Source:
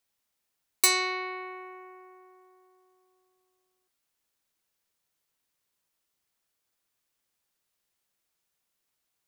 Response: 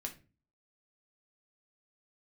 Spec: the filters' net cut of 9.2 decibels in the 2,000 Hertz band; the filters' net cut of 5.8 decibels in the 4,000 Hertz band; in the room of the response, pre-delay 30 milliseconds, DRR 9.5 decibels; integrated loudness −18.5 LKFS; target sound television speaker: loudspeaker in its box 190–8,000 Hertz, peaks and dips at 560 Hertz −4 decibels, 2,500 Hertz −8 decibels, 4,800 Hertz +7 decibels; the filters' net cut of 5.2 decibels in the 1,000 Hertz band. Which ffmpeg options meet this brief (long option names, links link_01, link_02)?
-filter_complex "[0:a]equalizer=frequency=1000:width_type=o:gain=-4.5,equalizer=frequency=2000:width_type=o:gain=-3.5,equalizer=frequency=4000:width_type=o:gain=-8.5,asplit=2[link_01][link_02];[1:a]atrim=start_sample=2205,adelay=30[link_03];[link_02][link_03]afir=irnorm=-1:irlink=0,volume=-8dB[link_04];[link_01][link_04]amix=inputs=2:normalize=0,highpass=frequency=190:width=0.5412,highpass=frequency=190:width=1.3066,equalizer=frequency=560:width_type=q:width=4:gain=-4,equalizer=frequency=2500:width_type=q:width=4:gain=-8,equalizer=frequency=4800:width_type=q:width=4:gain=7,lowpass=frequency=8000:width=0.5412,lowpass=frequency=8000:width=1.3066,volume=14dB"